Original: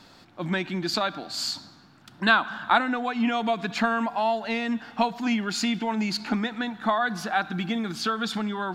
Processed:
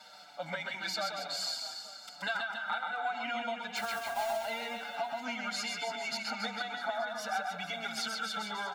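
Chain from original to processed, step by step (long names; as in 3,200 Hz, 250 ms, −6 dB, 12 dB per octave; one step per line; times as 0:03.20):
high-pass filter 490 Hz 12 dB per octave
comb filter 1.4 ms, depth 99%
downward compressor 5 to 1, threshold −32 dBFS, peak gain reduction 18.5 dB
0:03.76–0:04.37: log-companded quantiser 4 bits
on a send: reverse bouncing-ball delay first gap 130 ms, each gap 1.15×, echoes 5
on the sum: barber-pole flanger 6 ms −1.1 Hz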